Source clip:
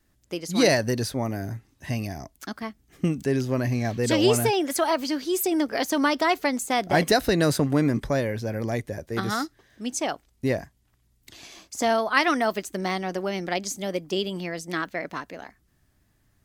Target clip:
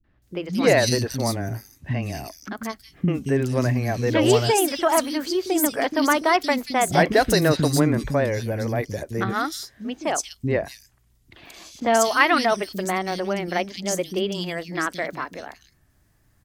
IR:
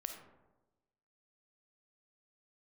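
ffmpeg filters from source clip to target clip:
-filter_complex "[0:a]acrossover=split=270|3300[s0][s1][s2];[s1]adelay=40[s3];[s2]adelay=220[s4];[s0][s3][s4]amix=inputs=3:normalize=0,asettb=1/sr,asplit=3[s5][s6][s7];[s5]atrim=end=11.804[s8];[s6]atrim=start=11.8:end=12.39,asetpts=PTS-STARTPTS,afade=t=in:d=0.004:c=qsin,afade=t=out:st=0.586:d=0.004:c=qsin,adynamicequalizer=threshold=0.0224:dfrequency=3000:dqfactor=0.7:tfrequency=3000:tqfactor=0.7:attack=5:release=100:ratio=0.375:range=3:mode=boostabove:tftype=highshelf[s9];[s7]atrim=start=12.386[s10];[s8][s9]acrossfade=d=0.004:c1=hsin:c2=qsin[s11];[s11][s10]acrossfade=d=0.004:c1=qsin:c2=hsin,volume=1.58"

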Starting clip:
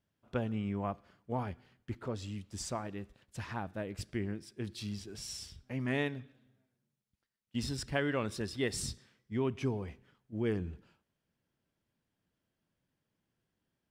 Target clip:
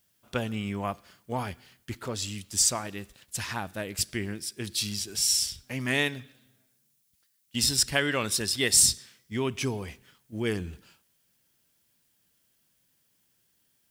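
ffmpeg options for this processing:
-af "crystalizer=i=7.5:c=0,volume=1.33"

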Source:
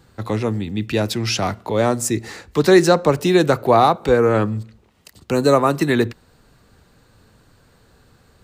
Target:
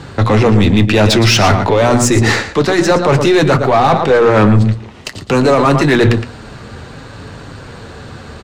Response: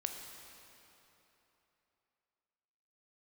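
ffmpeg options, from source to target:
-af "highpass=44,equalizer=f=4500:t=o:w=0.45:g=-2.5,areverse,acompressor=threshold=0.0631:ratio=20,areverse,lowpass=5700,bandreject=f=60:t=h:w=6,bandreject=f=120:t=h:w=6,bandreject=f=180:t=h:w=6,bandreject=f=240:t=h:w=6,aecho=1:1:115:0.251,apsyclip=26.6,flanger=delay=7:depth=2.4:regen=-55:speed=0.55:shape=sinusoidal,aeval=exprs='1.12*(cos(1*acos(clip(val(0)/1.12,-1,1)))-cos(1*PI/2))+0.0501*(cos(8*acos(clip(val(0)/1.12,-1,1)))-cos(8*PI/2))':c=same,volume=0.841"

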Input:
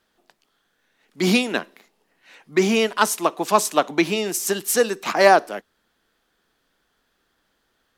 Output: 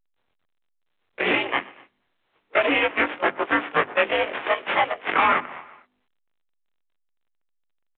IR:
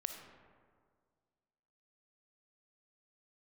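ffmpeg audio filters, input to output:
-filter_complex "[0:a]afftfilt=real='re':imag='-im':win_size=2048:overlap=0.75,aecho=1:1:121|242|363|484:0.126|0.0629|0.0315|0.0157,asplit=2[s0][s1];[s1]acrusher=bits=3:mix=0:aa=0.000001,volume=0.596[s2];[s0][s2]amix=inputs=2:normalize=0,aeval=exprs='abs(val(0))':c=same,agate=range=0.0282:threshold=0.00355:ratio=16:detection=peak,alimiter=limit=0.316:level=0:latency=1:release=474,highpass=f=430:t=q:w=0.5412,highpass=f=430:t=q:w=1.307,lowpass=f=3000:t=q:w=0.5176,lowpass=f=3000:t=q:w=0.7071,lowpass=f=3000:t=q:w=1.932,afreqshift=-140,bandreject=f=50:t=h:w=6,bandreject=f=100:t=h:w=6,bandreject=f=150:t=h:w=6,bandreject=f=200:t=h:w=6,bandreject=f=250:t=h:w=6,bandreject=f=300:t=h:w=6,bandreject=f=350:t=h:w=6,bandreject=f=400:t=h:w=6,volume=2.24" -ar 8000 -c:a pcm_alaw

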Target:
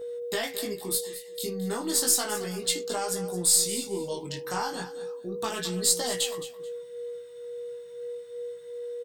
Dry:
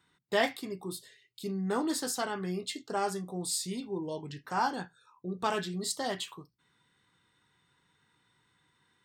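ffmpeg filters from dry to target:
-af "acompressor=threshold=0.0251:ratio=12,crystalizer=i=4:c=0,aeval=exprs='0.237*(cos(1*acos(clip(val(0)/0.237,-1,1)))-cos(1*PI/2))+0.00473*(cos(6*acos(clip(val(0)/0.237,-1,1)))-cos(6*PI/2))':c=same,aeval=exprs='val(0)+0.0126*sin(2*PI*480*n/s)':c=same,flanger=delay=16.5:depth=6:speed=0.33,aecho=1:1:217|434:0.2|0.0419,volume=1.88"

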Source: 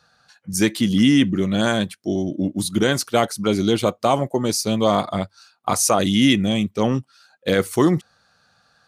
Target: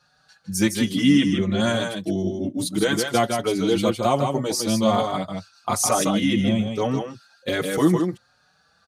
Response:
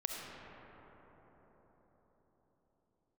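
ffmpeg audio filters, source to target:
-filter_complex "[0:a]asettb=1/sr,asplit=3[s0][s1][s2];[s0]atrim=end=1.174[s3];[s1]atrim=start=1.17:end=1.6,asetpts=PTS-STARTPTS,afade=t=in:d=0.004:c=qsin,afade=t=out:st=0.426:d=0.004:c=qsin,lowpass=7000[s4];[s2]atrim=start=1.596[s5];[s3][s4]acrossfade=d=0.004:c1=hsin:c2=qsin[s6];[s6][s5]acrossfade=d=0.004:c1=qsin:c2=hsin,asettb=1/sr,asplit=3[s7][s8][s9];[s7]atrim=end=6.044[s10];[s8]atrim=start=6.04:end=6.71,asetpts=PTS-STARTPTS,afade=t=in:d=0.004:c=qsin,afade=t=out:st=0.666:d=0.004:c=qsin,highshelf=f=2500:g=-9[s11];[s9]atrim=start=6.706[s12];[s10][s11]acrossfade=d=0.004:c1=hsin:c2=qsin[s13];[s13][s12]acrossfade=d=0.004:c1=qsin:c2=hsin,aecho=1:1:158:0.562,asplit=2[s14][s15];[s15]adelay=5.1,afreqshift=1.2[s16];[s14][s16]amix=inputs=2:normalize=1"

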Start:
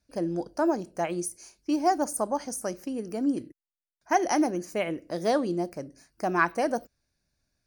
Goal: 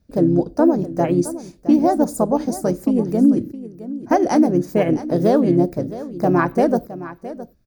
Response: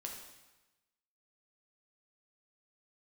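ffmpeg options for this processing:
-filter_complex "[0:a]tiltshelf=f=720:g=8.5,alimiter=limit=0.158:level=0:latency=1:release=179,asplit=2[s0][s1];[s1]asetrate=35002,aresample=44100,atempo=1.25992,volume=0.501[s2];[s0][s2]amix=inputs=2:normalize=0,aexciter=amount=2.5:drive=4.8:freq=12000,asplit=2[s3][s4];[s4]aecho=0:1:665:0.178[s5];[s3][s5]amix=inputs=2:normalize=0,volume=2.51"

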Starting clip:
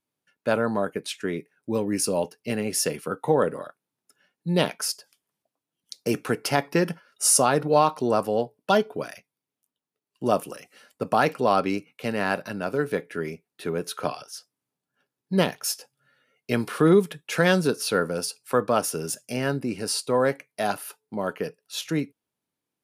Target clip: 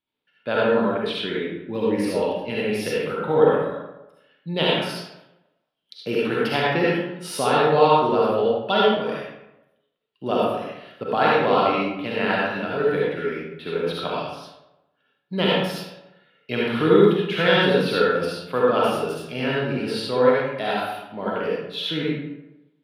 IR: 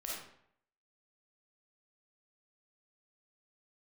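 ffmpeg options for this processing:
-filter_complex "[0:a]highshelf=f=4900:t=q:w=3:g=-12.5,acrossover=split=6400[s0][s1];[s1]volume=42.2,asoftclip=hard,volume=0.0237[s2];[s0][s2]amix=inputs=2:normalize=0[s3];[1:a]atrim=start_sample=2205,asetrate=31311,aresample=44100[s4];[s3][s4]afir=irnorm=-1:irlink=0"

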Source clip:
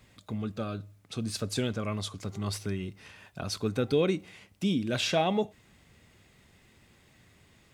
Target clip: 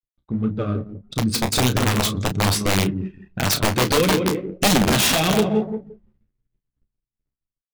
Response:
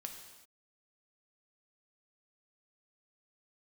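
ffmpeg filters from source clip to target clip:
-filter_complex "[0:a]asplit=2[s0][s1];[s1]adelay=173,lowpass=f=1400:p=1,volume=0.422,asplit=2[s2][s3];[s3]adelay=173,lowpass=f=1400:p=1,volume=0.4,asplit=2[s4][s5];[s5]adelay=173,lowpass=f=1400:p=1,volume=0.4,asplit=2[s6][s7];[s7]adelay=173,lowpass=f=1400:p=1,volume=0.4,asplit=2[s8][s9];[s9]adelay=173,lowpass=f=1400:p=1,volume=0.4[s10];[s0][s2][s4][s6][s8][s10]amix=inputs=6:normalize=0,asplit=2[s11][s12];[1:a]atrim=start_sample=2205,adelay=123[s13];[s12][s13]afir=irnorm=-1:irlink=0,volume=0.237[s14];[s11][s14]amix=inputs=2:normalize=0,dynaudnorm=f=250:g=13:m=1.78,apsyclip=5.31,acrusher=bits=4:mix=0:aa=0.5,anlmdn=6310,acompressor=threshold=0.355:ratio=12,equalizer=f=710:w=1.2:g=-6,aeval=exprs='(mod(2.51*val(0)+1,2)-1)/2.51':c=same,asplit=2[s15][s16];[s16]adelay=32,volume=0.335[s17];[s15][s17]amix=inputs=2:normalize=0,flanger=delay=6.4:depth=7.9:regen=-28:speed=1.7:shape=sinusoidal"

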